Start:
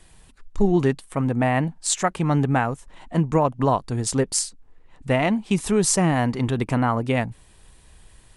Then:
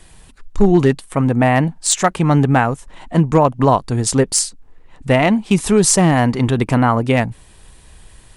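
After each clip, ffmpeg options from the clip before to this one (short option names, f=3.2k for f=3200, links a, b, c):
-af "asoftclip=type=hard:threshold=-10.5dB,volume=7dB"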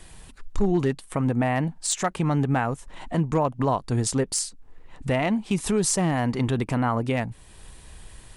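-af "alimiter=limit=-12.5dB:level=0:latency=1:release=404,volume=-1.5dB"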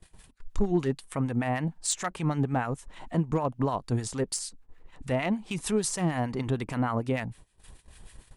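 -filter_complex "[0:a]agate=range=-17dB:threshold=-43dB:ratio=16:detection=peak,acrossover=split=1100[a][b];[a]aeval=exprs='val(0)*(1-0.7/2+0.7/2*cos(2*PI*6.6*n/s))':c=same[c];[b]aeval=exprs='val(0)*(1-0.7/2-0.7/2*cos(2*PI*6.6*n/s))':c=same[d];[c][d]amix=inputs=2:normalize=0,volume=-1.5dB"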